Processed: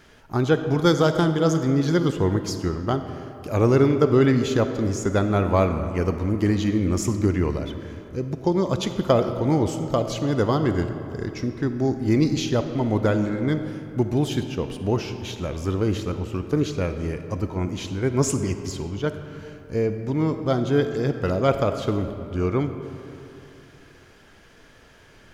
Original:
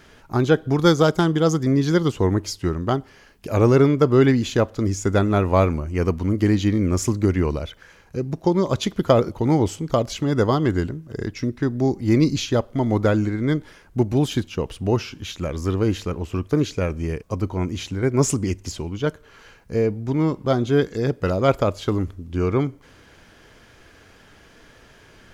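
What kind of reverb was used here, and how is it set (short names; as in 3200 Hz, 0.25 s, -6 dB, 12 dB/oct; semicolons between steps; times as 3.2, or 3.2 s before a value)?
digital reverb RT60 3 s, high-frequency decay 0.55×, pre-delay 10 ms, DRR 8 dB; gain -2.5 dB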